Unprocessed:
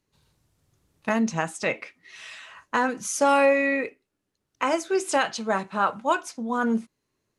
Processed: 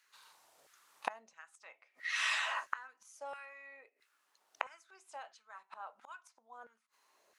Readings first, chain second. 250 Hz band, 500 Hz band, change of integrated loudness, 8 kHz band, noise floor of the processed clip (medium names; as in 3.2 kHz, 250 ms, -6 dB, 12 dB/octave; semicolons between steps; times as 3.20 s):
under -40 dB, -28.0 dB, -14.5 dB, -17.5 dB, -79 dBFS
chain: inverted gate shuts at -29 dBFS, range -36 dB; LFO high-pass saw down 1.5 Hz 580–1600 Hz; trim +7 dB